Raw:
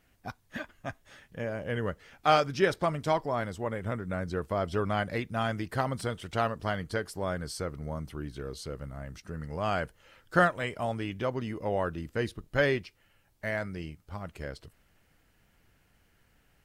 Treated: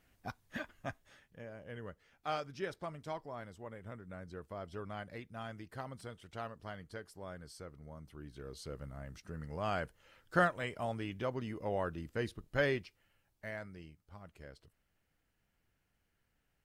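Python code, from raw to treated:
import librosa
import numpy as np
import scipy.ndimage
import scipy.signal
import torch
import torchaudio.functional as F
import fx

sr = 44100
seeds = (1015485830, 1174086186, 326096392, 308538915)

y = fx.gain(x, sr, db=fx.line((0.86, -3.5), (1.44, -14.5), (7.97, -14.5), (8.72, -6.0), (12.79, -6.0), (13.88, -13.5)))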